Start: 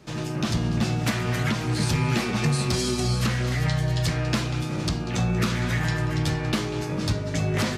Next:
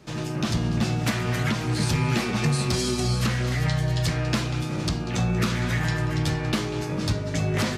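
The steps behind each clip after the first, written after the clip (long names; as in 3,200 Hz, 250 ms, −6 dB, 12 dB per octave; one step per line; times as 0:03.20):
no processing that can be heard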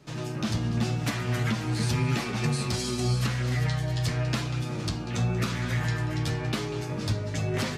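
flanger 0.9 Hz, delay 6.9 ms, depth 2.7 ms, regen +49%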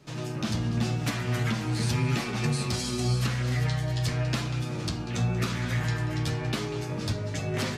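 hum removal 53.56 Hz, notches 40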